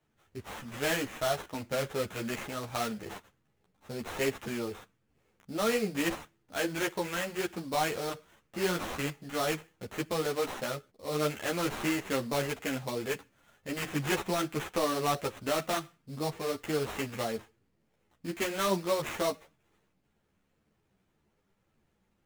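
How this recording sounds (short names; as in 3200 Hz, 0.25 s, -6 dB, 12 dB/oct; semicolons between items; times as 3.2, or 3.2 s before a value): aliases and images of a low sample rate 4800 Hz, jitter 20%; a shimmering, thickened sound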